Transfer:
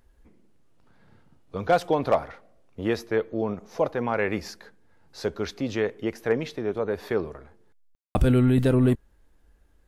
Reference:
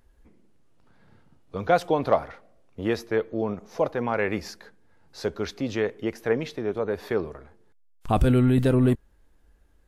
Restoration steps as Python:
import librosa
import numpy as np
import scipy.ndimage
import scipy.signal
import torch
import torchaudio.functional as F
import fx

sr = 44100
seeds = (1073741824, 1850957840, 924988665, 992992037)

y = fx.fix_declip(x, sr, threshold_db=-11.5)
y = fx.fix_ambience(y, sr, seeds[0], print_start_s=9.36, print_end_s=9.86, start_s=7.95, end_s=8.15)